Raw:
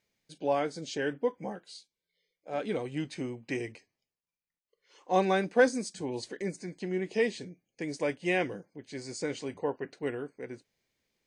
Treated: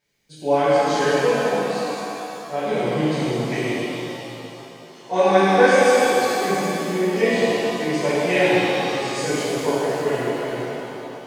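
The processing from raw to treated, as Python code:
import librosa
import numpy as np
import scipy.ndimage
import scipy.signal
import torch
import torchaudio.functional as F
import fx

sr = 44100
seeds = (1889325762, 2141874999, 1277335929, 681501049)

y = fx.highpass(x, sr, hz=310.0, slope=12, at=(5.3, 6.25), fade=0.02)
y = fx.rev_shimmer(y, sr, seeds[0], rt60_s=3.0, semitones=7, shimmer_db=-8, drr_db=-12.0)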